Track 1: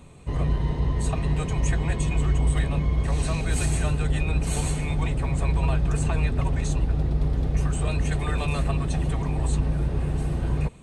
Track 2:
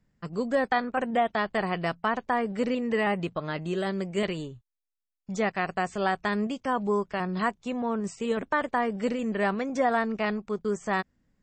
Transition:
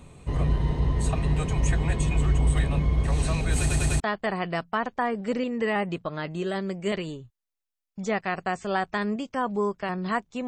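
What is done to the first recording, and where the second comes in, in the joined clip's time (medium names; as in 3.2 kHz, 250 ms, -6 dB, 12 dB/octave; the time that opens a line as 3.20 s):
track 1
3.60 s: stutter in place 0.10 s, 4 plays
4.00 s: go over to track 2 from 1.31 s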